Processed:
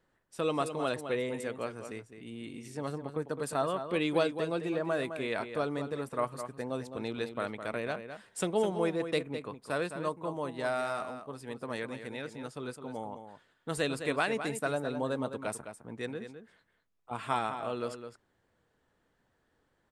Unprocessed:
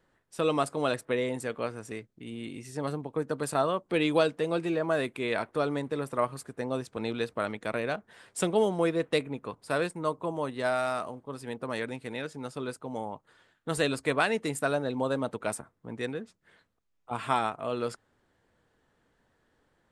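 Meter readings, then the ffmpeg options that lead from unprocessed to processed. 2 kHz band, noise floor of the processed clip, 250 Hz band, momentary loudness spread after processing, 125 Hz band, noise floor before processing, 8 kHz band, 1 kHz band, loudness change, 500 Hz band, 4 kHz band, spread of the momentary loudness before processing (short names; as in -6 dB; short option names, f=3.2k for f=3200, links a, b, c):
-3.5 dB, -75 dBFS, -3.5 dB, 13 LU, -3.5 dB, -73 dBFS, -4.0 dB, -3.5 dB, -3.5 dB, -3.5 dB, -3.5 dB, 13 LU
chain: -filter_complex "[0:a]asplit=2[a][b];[b]adelay=209.9,volume=-9dB,highshelf=f=4k:g=-4.72[c];[a][c]amix=inputs=2:normalize=0,volume=-4dB"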